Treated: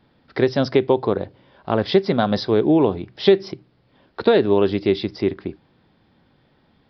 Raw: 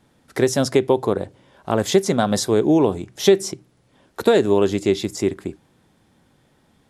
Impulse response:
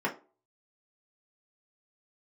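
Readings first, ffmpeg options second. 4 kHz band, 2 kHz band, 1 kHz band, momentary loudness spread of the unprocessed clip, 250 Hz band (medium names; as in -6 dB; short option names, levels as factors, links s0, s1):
-1.0 dB, 0.0 dB, 0.0 dB, 14 LU, 0.0 dB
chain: -af "aresample=11025,aresample=44100"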